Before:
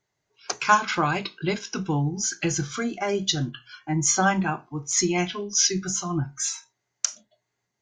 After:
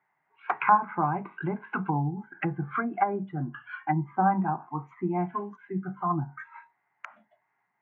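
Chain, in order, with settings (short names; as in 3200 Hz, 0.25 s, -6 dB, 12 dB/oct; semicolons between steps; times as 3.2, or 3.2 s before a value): treble ducked by the level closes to 530 Hz, closed at -23 dBFS; elliptic band-pass 150–2100 Hz, stop band 40 dB; resonant low shelf 670 Hz -7.5 dB, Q 3; gain +6 dB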